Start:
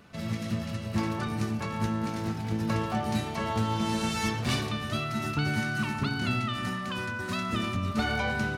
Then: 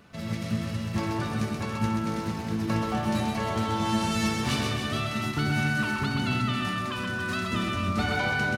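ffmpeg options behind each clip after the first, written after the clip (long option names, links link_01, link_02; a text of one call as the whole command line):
ffmpeg -i in.wav -af "aecho=1:1:130|279.5|451.4|649.1|876.5:0.631|0.398|0.251|0.158|0.1" out.wav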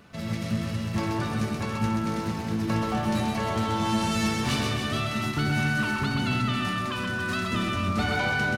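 ffmpeg -i in.wav -af "aeval=exprs='0.2*(cos(1*acos(clip(val(0)/0.2,-1,1)))-cos(1*PI/2))+0.00891*(cos(5*acos(clip(val(0)/0.2,-1,1)))-cos(5*PI/2))+0.00251*(cos(8*acos(clip(val(0)/0.2,-1,1)))-cos(8*PI/2))':channel_layout=same" out.wav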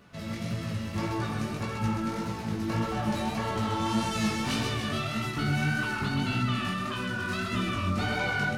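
ffmpeg -i in.wav -af "flanger=delay=15.5:depth=6.3:speed=1.7" out.wav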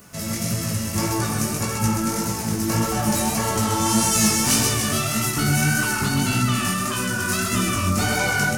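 ffmpeg -i in.wav -af "aexciter=amount=3.4:drive=9.4:freq=5400,volume=7dB" out.wav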